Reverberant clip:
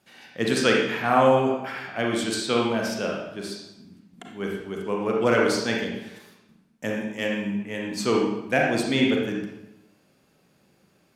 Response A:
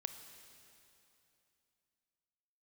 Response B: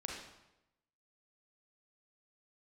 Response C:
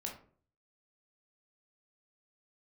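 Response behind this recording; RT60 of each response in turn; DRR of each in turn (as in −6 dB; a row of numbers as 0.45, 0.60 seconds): B; 2.9, 0.90, 0.45 seconds; 8.0, −1.0, −0.5 decibels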